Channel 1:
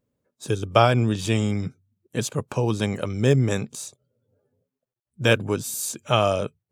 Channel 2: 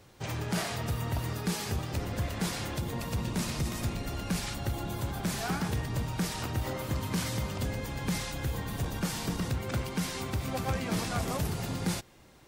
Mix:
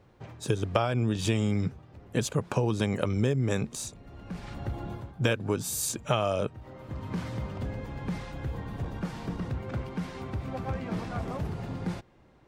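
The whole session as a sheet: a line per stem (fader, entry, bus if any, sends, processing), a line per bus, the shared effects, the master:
+2.0 dB, 0.00 s, no send, no processing
−1.0 dB, 0.00 s, no send, low-pass filter 1,500 Hz 6 dB per octave; automatic ducking −15 dB, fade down 0.25 s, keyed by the first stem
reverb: not used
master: high-shelf EQ 4,500 Hz −5 dB; downward compressor 10 to 1, threshold −22 dBFS, peak gain reduction 13.5 dB

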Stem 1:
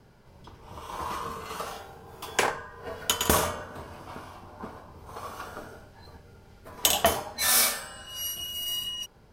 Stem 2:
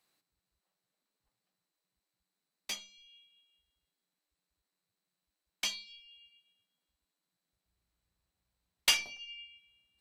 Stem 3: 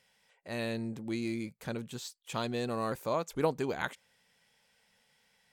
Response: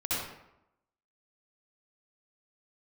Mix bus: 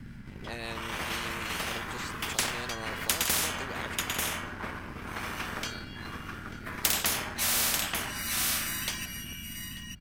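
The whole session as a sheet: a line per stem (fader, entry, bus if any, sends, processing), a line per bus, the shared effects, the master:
−1.0 dB, 0.00 s, no send, echo send −10.5 dB, drawn EQ curve 240 Hz 0 dB, 450 Hz −27 dB, 930 Hz −18 dB, 1,900 Hz 0 dB, 4,200 Hz −14 dB; leveller curve on the samples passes 1
−13.5 dB, 0.00 s, no send, echo send −20.5 dB, downward compressor 2 to 1, threshold −42 dBFS, peak gain reduction 11.5 dB
−12.5 dB, 0.00 s, no send, no echo send, rotating-speaker cabinet horn 5.5 Hz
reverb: not used
echo: single-tap delay 890 ms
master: low-shelf EQ 320 Hz +10.5 dB; every bin compressed towards the loudest bin 10 to 1

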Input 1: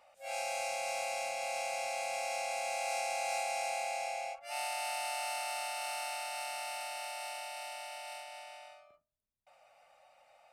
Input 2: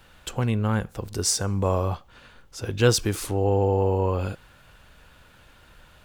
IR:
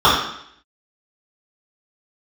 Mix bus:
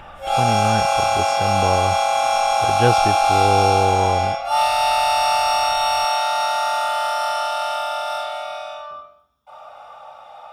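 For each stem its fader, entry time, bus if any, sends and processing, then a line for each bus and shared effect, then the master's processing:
+1.0 dB, 0.00 s, send −6.5 dB, high-shelf EQ 10,000 Hz +6.5 dB
+1.0 dB, 0.00 s, no send, upward compression, threshold −35 dBFS; Savitzky-Golay smoothing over 25 samples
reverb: on, RT60 0.70 s, pre-delay 3 ms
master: no processing

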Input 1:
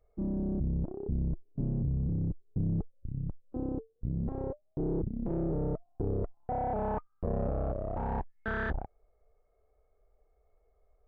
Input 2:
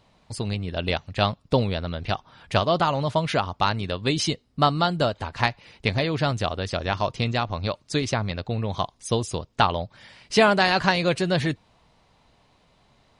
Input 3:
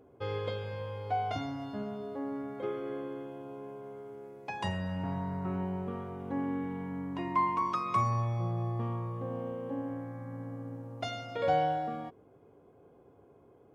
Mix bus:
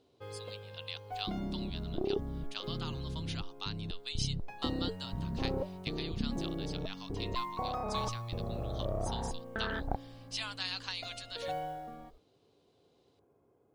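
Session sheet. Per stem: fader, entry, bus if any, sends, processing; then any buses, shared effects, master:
+1.5 dB, 1.10 s, no send, compressor whose output falls as the input rises −38 dBFS, ratio −1
−20.0 dB, 0.00 s, no send, high-pass filter 990 Hz 24 dB per octave; high shelf with overshoot 2,500 Hz +8 dB, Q 1.5
−10.0 dB, 0.00 s, no send, noise that follows the level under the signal 29 dB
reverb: not used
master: no processing

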